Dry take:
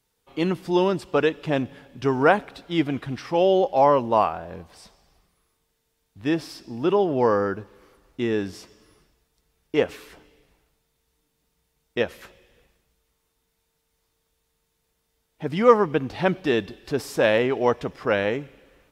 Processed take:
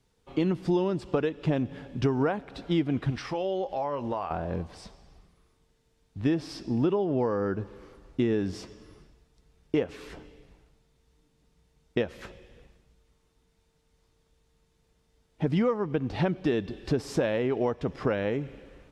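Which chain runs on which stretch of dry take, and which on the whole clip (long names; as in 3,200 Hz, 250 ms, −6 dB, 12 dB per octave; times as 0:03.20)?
0:03.10–0:04.31: parametric band 210 Hz −9 dB 2.7 octaves + downward compressor 2.5 to 1, threshold −34 dBFS + double-tracking delay 21 ms −13.5 dB
whole clip: downward compressor 6 to 1, threshold −29 dBFS; low-pass filter 8,100 Hz 12 dB per octave; low-shelf EQ 480 Hz +9 dB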